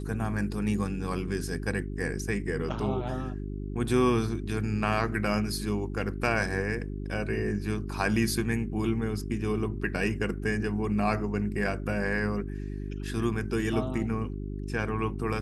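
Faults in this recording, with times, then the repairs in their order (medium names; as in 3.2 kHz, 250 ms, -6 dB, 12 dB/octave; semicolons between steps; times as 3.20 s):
hum 50 Hz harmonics 8 -35 dBFS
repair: de-hum 50 Hz, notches 8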